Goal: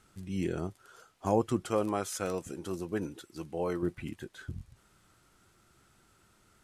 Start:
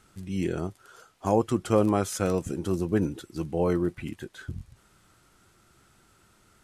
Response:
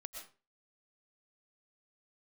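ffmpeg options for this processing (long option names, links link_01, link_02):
-filter_complex "[0:a]asettb=1/sr,asplit=3[link_01][link_02][link_03];[link_01]atrim=end=1.664[link_04];[link_02]atrim=start=1.66:end=3.83,asetpts=PTS-STARTPTS,afade=type=in:duration=0.004:curve=qsin,afade=type=out:start_time=2.166:duration=0.004:curve=qsin,lowshelf=frequency=300:gain=-10[link_05];[link_03]atrim=start=3.826[link_06];[link_04][link_05]acrossfade=duration=0.004:curve1=hsin:curve2=qsin[link_07];[link_07][link_06]acrossfade=duration=0.004:curve1=qsin:curve2=hsin,volume=-4dB"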